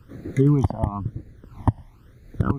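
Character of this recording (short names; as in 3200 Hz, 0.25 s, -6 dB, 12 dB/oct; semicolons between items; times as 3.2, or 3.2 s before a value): phasing stages 12, 1 Hz, lowest notch 410–1000 Hz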